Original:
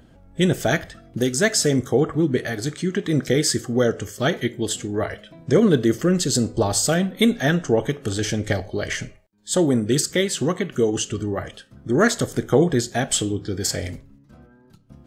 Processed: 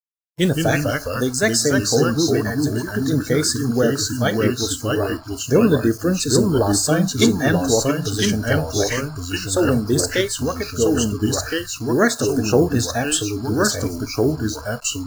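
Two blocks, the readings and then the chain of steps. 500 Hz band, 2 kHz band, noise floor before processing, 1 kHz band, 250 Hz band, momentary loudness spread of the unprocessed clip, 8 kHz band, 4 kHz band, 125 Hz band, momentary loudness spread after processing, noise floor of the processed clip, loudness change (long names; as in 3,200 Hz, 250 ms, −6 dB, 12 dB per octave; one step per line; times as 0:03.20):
+2.0 dB, +3.0 dB, −53 dBFS, +3.5 dB, +2.5 dB, 9 LU, +3.5 dB, +3.0 dB, +3.0 dB, 6 LU, −34 dBFS, +2.0 dB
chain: delay with pitch and tempo change per echo 121 ms, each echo −2 semitones, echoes 2
bit-depth reduction 6 bits, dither none
noise reduction from a noise print of the clip's start 19 dB
level +1 dB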